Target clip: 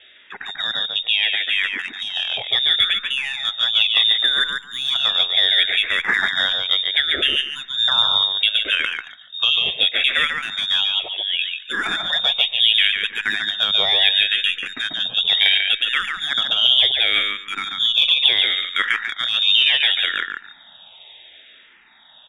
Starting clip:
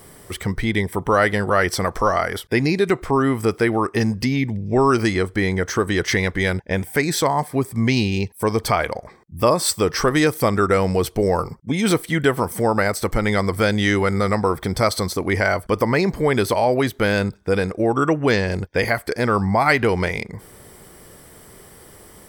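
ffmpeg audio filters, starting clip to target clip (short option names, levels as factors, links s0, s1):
-filter_complex "[0:a]alimiter=limit=0.282:level=0:latency=1:release=317,asplit=3[s0][s1][s2];[s0]afade=t=out:st=10.84:d=0.02[s3];[s1]highpass=f=1100:p=1,afade=t=in:st=10.84:d=0.02,afade=t=out:st=11.4:d=0.02[s4];[s2]afade=t=in:st=11.4:d=0.02[s5];[s3][s4][s5]amix=inputs=3:normalize=0,asplit=2[s6][s7];[s7]aecho=0:1:143|286|429:0.631|0.12|0.0228[s8];[s6][s8]amix=inputs=2:normalize=0,dynaudnorm=f=150:g=31:m=1.88,crystalizer=i=3.5:c=0,lowpass=f=3200:t=q:w=0.5098,lowpass=f=3200:t=q:w=0.6013,lowpass=f=3200:t=q:w=0.9,lowpass=f=3200:t=q:w=2.563,afreqshift=-3800,aeval=exprs='1*(cos(1*acos(clip(val(0)/1,-1,1)))-cos(1*PI/2))+0.0631*(cos(2*acos(clip(val(0)/1,-1,1)))-cos(2*PI/2))+0.0316*(cos(4*acos(clip(val(0)/1,-1,1)))-cos(4*PI/2))+0.0126*(cos(7*acos(clip(val(0)/1,-1,1)))-cos(7*PI/2))':c=same,asplit=2[s9][s10];[s10]afreqshift=-0.7[s11];[s9][s11]amix=inputs=2:normalize=1,volume=1.12"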